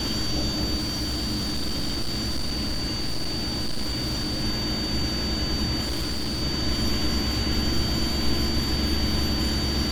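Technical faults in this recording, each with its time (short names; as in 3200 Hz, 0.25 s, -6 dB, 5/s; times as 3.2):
tone 4600 Hz -29 dBFS
0.77–4.44 clipped -23 dBFS
5.81–6.43 clipped -24 dBFS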